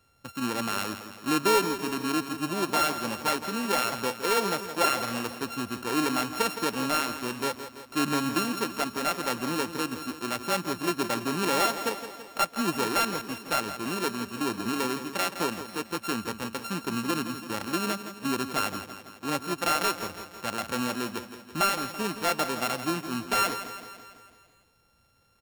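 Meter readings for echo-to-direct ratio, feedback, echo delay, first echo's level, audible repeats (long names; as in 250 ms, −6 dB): −9.0 dB, 58%, 166 ms, −11.0 dB, 6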